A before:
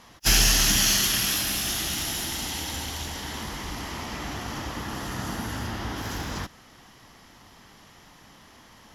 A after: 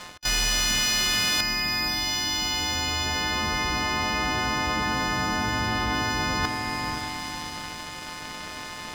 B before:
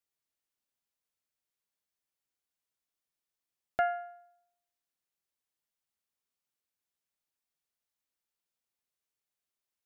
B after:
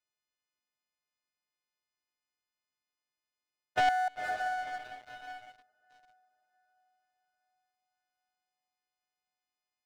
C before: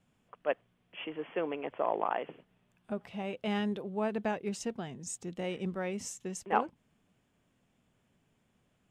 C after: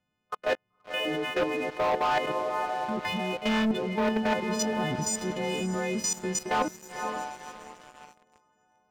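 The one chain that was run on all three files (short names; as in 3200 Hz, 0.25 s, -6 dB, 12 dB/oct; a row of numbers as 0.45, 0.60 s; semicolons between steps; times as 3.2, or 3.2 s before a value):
frequency quantiser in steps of 3 st; level quantiser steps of 16 dB; air absorption 170 m; on a send: diffused feedback echo 0.514 s, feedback 46%, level -14 dB; on the sum: sample leveller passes 3; reverse; compressor 6:1, threshold -32 dBFS; reverse; gain +8 dB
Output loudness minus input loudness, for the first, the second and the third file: +0.5, +2.0, +7.0 LU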